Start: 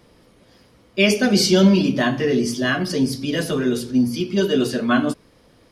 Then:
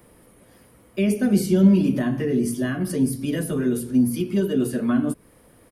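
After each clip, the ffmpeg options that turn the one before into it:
-filter_complex "[0:a]firequalizer=gain_entry='entry(1900,0);entry(3600,-7);entry(5200,-9);entry(9400,11)':delay=0.05:min_phase=1,acrossover=split=360[a][b];[b]acompressor=threshold=-31dB:ratio=6[c];[a][c]amix=inputs=2:normalize=0"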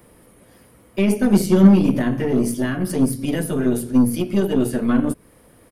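-af "aeval=exprs='0.501*(cos(1*acos(clip(val(0)/0.501,-1,1)))-cos(1*PI/2))+0.0447*(cos(3*acos(clip(val(0)/0.501,-1,1)))-cos(3*PI/2))+0.0224*(cos(8*acos(clip(val(0)/0.501,-1,1)))-cos(8*PI/2))':c=same,volume=5dB"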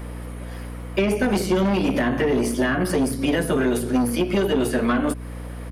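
-filter_complex "[0:a]asplit=2[a][b];[b]highpass=f=720:p=1,volume=21dB,asoftclip=type=tanh:threshold=-1dB[c];[a][c]amix=inputs=2:normalize=0,lowpass=f=2.8k:p=1,volume=-6dB,acrossover=split=370|1800[d][e][f];[d]acompressor=threshold=-24dB:ratio=4[g];[e]acompressor=threshold=-24dB:ratio=4[h];[f]acompressor=threshold=-32dB:ratio=4[i];[g][h][i]amix=inputs=3:normalize=0,aeval=exprs='val(0)+0.0251*(sin(2*PI*60*n/s)+sin(2*PI*2*60*n/s)/2+sin(2*PI*3*60*n/s)/3+sin(2*PI*4*60*n/s)/4+sin(2*PI*5*60*n/s)/5)':c=same"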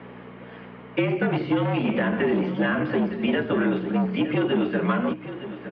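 -af "aecho=1:1:912:0.237,highpass=f=210:t=q:w=0.5412,highpass=f=210:t=q:w=1.307,lowpass=f=3.3k:t=q:w=0.5176,lowpass=f=3.3k:t=q:w=0.7071,lowpass=f=3.3k:t=q:w=1.932,afreqshift=-52,volume=-1.5dB"

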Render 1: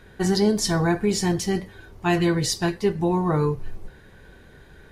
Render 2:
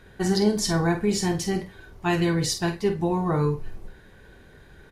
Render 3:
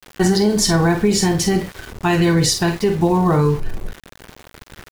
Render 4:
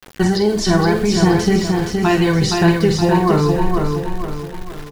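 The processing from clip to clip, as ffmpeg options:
-filter_complex "[0:a]asplit=2[a][b];[b]adelay=48,volume=-9dB[c];[a][c]amix=inputs=2:normalize=0,volume=-2dB"
-filter_complex "[0:a]asplit=2[a][b];[b]acompressor=threshold=-30dB:ratio=6,volume=-3dB[c];[a][c]amix=inputs=2:normalize=0,alimiter=limit=-14.5dB:level=0:latency=1:release=105,aeval=exprs='val(0)*gte(abs(val(0)),0.0112)':c=same,volume=8dB"
-filter_complex "[0:a]acrossover=split=5200[a][b];[b]acompressor=threshold=-37dB:ratio=4:attack=1:release=60[c];[a][c]amix=inputs=2:normalize=0,aphaser=in_gain=1:out_gain=1:delay=3:decay=0.34:speed=0.74:type=sinusoidal,aecho=1:1:469|938|1407|1876|2345:0.596|0.256|0.11|0.0474|0.0204"

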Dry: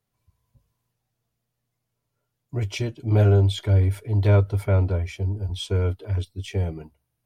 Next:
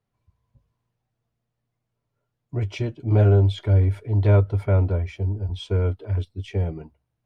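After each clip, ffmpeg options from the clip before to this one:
-af "aemphasis=mode=reproduction:type=75fm"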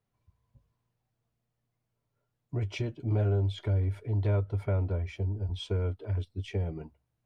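-af "acompressor=threshold=-28dB:ratio=2,volume=-2.5dB"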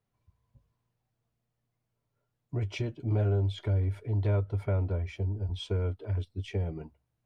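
-af anull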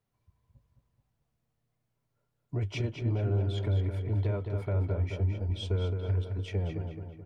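-filter_complex "[0:a]alimiter=limit=-23dB:level=0:latency=1:release=29,asplit=2[a][b];[b]adelay=215,lowpass=f=3.7k:p=1,volume=-5.5dB,asplit=2[c][d];[d]adelay=215,lowpass=f=3.7k:p=1,volume=0.49,asplit=2[e][f];[f]adelay=215,lowpass=f=3.7k:p=1,volume=0.49,asplit=2[g][h];[h]adelay=215,lowpass=f=3.7k:p=1,volume=0.49,asplit=2[i][j];[j]adelay=215,lowpass=f=3.7k:p=1,volume=0.49,asplit=2[k][l];[l]adelay=215,lowpass=f=3.7k:p=1,volume=0.49[m];[a][c][e][g][i][k][m]amix=inputs=7:normalize=0"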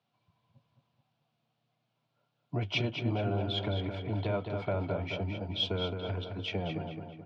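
-af "crystalizer=i=5.5:c=0,highpass=f=130:w=0.5412,highpass=f=130:w=1.3066,equalizer=f=410:t=q:w=4:g=-6,equalizer=f=720:t=q:w=4:g=6,equalizer=f=1.9k:t=q:w=4:g=-9,lowpass=f=3.6k:w=0.5412,lowpass=f=3.6k:w=1.3066,volume=3dB"

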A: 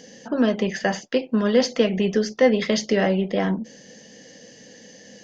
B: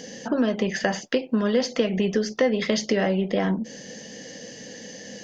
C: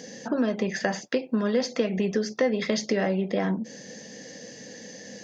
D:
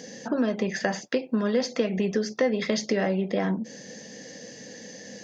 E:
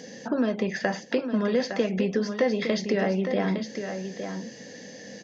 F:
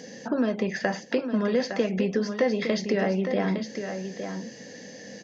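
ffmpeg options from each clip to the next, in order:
-af "acompressor=threshold=-29dB:ratio=2.5,volume=6dB"
-af "highpass=70,bandreject=f=3k:w=8,volume=-2.5dB"
-af anull
-filter_complex "[0:a]acrossover=split=5700[a][b];[b]acompressor=threshold=-59dB:ratio=4:attack=1:release=60[c];[a][c]amix=inputs=2:normalize=0,aecho=1:1:860:0.398"
-af "equalizer=f=3.5k:w=5.8:g=-2.5"

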